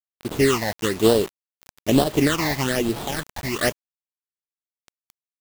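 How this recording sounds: aliases and images of a low sample rate 2400 Hz, jitter 20%; phasing stages 8, 1.1 Hz, lowest notch 380–2100 Hz; a quantiser's noise floor 6-bit, dither none; noise-modulated level

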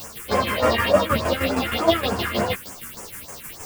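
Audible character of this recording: a quantiser's noise floor 6-bit, dither triangular; phasing stages 4, 3.4 Hz, lowest notch 630–3900 Hz; tremolo saw down 6.4 Hz, depth 65%; a shimmering, thickened sound

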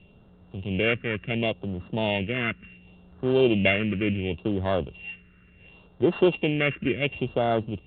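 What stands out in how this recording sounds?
a buzz of ramps at a fixed pitch in blocks of 16 samples; phasing stages 4, 0.7 Hz, lowest notch 780–2400 Hz; µ-law

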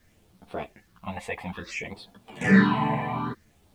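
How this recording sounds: phasing stages 6, 0.59 Hz, lowest notch 360–2000 Hz; a quantiser's noise floor 12-bit, dither none; a shimmering, thickened sound

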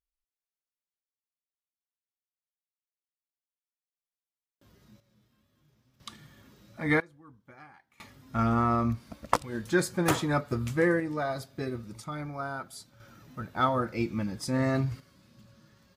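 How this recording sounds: random-step tremolo 1 Hz, depth 95%; AAC

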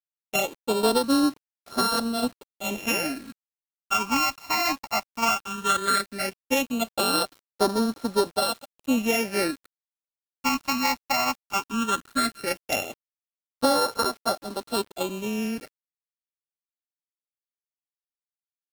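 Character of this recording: a buzz of ramps at a fixed pitch in blocks of 32 samples; phasing stages 8, 0.16 Hz, lowest notch 450–2500 Hz; a quantiser's noise floor 8-bit, dither none; AAC

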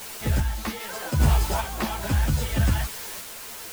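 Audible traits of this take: a quantiser's noise floor 6-bit, dither triangular; random-step tremolo 2.5 Hz; a shimmering, thickened sound

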